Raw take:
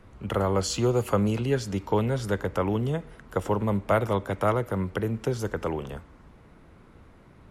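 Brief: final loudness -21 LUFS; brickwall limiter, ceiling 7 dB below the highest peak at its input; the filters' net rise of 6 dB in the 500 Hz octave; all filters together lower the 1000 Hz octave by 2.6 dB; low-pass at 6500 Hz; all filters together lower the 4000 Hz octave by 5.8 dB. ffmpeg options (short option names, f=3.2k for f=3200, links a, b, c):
-af "lowpass=6.5k,equalizer=f=500:t=o:g=8.5,equalizer=f=1k:t=o:g=-6,equalizer=f=4k:t=o:g=-6.5,volume=5dB,alimiter=limit=-8.5dB:level=0:latency=1"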